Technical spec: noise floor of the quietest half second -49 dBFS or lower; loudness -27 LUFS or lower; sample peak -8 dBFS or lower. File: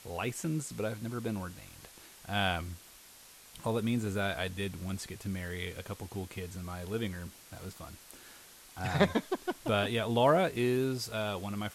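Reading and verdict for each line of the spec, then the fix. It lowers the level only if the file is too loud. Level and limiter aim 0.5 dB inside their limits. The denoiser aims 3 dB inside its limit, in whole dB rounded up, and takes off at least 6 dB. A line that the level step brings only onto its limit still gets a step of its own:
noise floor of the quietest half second -55 dBFS: OK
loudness -33.5 LUFS: OK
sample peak -10.0 dBFS: OK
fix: none

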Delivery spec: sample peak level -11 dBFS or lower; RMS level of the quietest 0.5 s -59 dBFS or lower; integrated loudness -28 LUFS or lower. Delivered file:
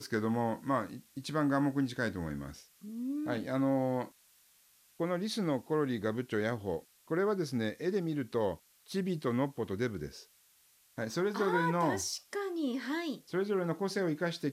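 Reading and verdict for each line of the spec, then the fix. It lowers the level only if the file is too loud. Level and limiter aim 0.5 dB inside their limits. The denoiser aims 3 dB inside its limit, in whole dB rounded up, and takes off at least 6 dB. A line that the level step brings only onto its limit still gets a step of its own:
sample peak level -18.0 dBFS: OK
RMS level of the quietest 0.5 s -66 dBFS: OK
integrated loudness -34.0 LUFS: OK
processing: none

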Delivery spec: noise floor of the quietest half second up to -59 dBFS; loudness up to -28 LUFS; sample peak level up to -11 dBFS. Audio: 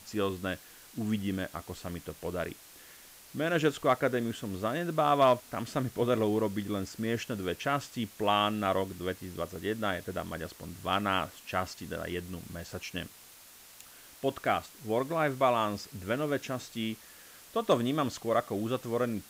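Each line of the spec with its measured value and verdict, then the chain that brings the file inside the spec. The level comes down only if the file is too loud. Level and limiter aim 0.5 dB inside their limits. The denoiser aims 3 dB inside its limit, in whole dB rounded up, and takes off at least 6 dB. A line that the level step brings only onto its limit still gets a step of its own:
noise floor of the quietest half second -54 dBFS: fail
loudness -32.0 LUFS: OK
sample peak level -14.5 dBFS: OK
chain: denoiser 8 dB, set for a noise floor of -54 dBFS

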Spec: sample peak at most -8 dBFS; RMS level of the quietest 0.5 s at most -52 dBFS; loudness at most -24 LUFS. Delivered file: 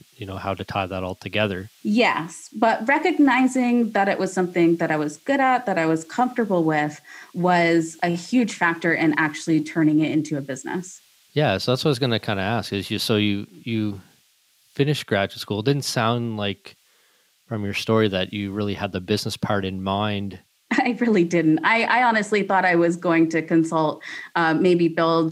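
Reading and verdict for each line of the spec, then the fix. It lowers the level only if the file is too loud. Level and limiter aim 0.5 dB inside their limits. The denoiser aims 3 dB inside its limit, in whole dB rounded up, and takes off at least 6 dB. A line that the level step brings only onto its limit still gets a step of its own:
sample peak -5.5 dBFS: fail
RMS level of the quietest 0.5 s -61 dBFS: OK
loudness -21.5 LUFS: fail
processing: gain -3 dB

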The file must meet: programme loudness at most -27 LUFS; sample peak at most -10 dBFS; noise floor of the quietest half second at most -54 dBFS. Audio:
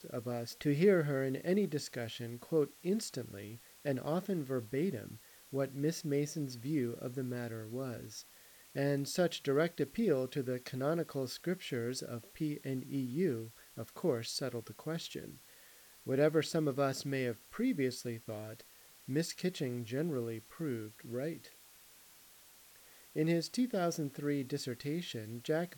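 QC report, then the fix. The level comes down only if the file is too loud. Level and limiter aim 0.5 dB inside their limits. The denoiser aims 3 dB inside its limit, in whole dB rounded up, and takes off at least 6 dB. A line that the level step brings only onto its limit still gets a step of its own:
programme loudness -36.5 LUFS: OK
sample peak -17.5 dBFS: OK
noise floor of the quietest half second -60 dBFS: OK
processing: none

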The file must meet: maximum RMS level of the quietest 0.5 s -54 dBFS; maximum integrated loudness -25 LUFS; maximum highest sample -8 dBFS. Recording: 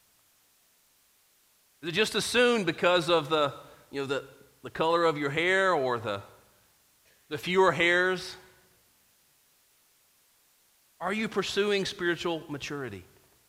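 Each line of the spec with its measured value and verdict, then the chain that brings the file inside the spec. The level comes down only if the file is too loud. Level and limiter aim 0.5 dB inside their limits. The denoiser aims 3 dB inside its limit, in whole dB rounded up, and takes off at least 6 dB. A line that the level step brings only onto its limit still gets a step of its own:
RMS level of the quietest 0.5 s -66 dBFS: OK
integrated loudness -27.0 LUFS: OK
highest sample -8.5 dBFS: OK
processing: none

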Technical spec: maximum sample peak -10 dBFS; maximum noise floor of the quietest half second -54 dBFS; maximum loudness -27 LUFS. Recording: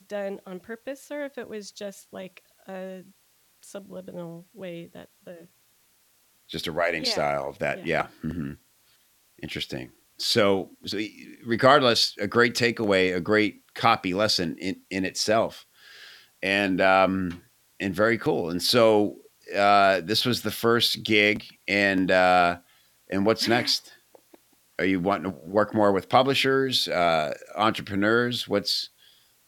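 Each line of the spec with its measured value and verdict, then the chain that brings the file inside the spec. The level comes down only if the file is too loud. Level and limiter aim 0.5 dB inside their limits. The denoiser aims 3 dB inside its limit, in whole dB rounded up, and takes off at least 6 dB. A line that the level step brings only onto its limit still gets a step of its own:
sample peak -4.5 dBFS: fail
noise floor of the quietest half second -64 dBFS: OK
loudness -23.5 LUFS: fail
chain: gain -4 dB; limiter -10.5 dBFS

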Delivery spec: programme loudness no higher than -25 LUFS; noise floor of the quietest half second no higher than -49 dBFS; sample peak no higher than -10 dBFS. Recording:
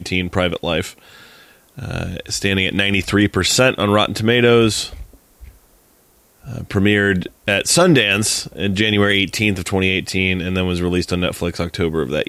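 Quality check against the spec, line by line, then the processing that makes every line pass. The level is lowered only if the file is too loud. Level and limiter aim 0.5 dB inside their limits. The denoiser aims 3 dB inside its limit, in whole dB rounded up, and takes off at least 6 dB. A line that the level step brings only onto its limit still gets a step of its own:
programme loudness -17.0 LUFS: fail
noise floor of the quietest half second -54 dBFS: OK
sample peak -3.5 dBFS: fail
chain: gain -8.5 dB

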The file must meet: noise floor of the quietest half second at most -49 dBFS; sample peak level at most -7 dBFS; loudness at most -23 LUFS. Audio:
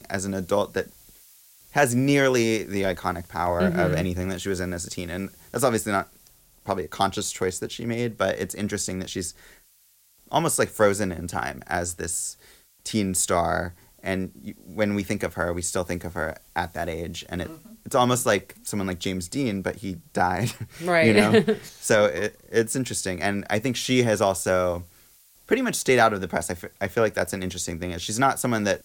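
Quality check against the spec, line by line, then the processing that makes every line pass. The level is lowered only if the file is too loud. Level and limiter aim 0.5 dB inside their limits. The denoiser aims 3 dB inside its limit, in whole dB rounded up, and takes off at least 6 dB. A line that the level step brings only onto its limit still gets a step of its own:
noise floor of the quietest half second -60 dBFS: OK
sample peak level -6.0 dBFS: fail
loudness -25.0 LUFS: OK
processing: limiter -7.5 dBFS

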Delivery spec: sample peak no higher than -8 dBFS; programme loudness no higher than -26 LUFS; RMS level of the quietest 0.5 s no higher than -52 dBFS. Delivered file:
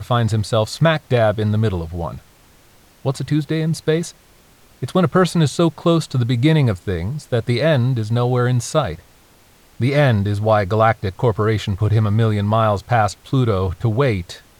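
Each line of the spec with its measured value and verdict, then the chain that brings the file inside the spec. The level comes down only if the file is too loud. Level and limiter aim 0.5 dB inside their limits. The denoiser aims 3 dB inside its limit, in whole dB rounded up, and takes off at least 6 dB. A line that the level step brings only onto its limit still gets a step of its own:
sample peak -4.0 dBFS: fail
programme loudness -18.5 LUFS: fail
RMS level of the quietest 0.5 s -51 dBFS: fail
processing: gain -8 dB

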